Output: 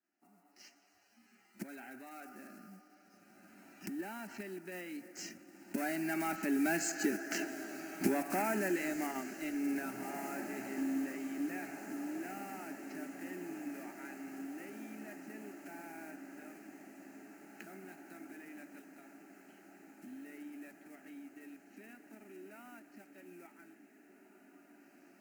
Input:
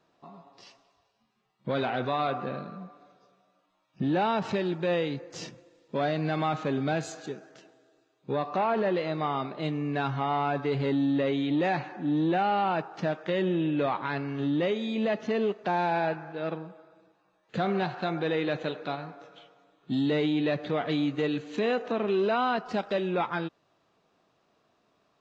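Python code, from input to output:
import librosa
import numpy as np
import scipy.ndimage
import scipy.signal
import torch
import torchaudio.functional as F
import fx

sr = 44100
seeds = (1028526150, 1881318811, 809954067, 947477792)

p1 = fx.block_float(x, sr, bits=5)
p2 = fx.recorder_agc(p1, sr, target_db=-21.0, rise_db_per_s=22.0, max_gain_db=30)
p3 = fx.doppler_pass(p2, sr, speed_mps=11, closest_m=3.6, pass_at_s=7.5)
p4 = scipy.signal.sosfilt(scipy.signal.butter(2, 200.0, 'highpass', fs=sr, output='sos'), p3)
p5 = fx.peak_eq(p4, sr, hz=680.0, db=-12.5, octaves=1.6)
p6 = fx.level_steps(p5, sr, step_db=17)
p7 = p5 + F.gain(torch.from_numpy(p6), -2.0).numpy()
p8 = fx.fixed_phaser(p7, sr, hz=720.0, stages=8)
p9 = fx.echo_diffused(p8, sr, ms=1979, feedback_pct=64, wet_db=-11.0)
y = F.gain(torch.from_numpy(p9), 11.0).numpy()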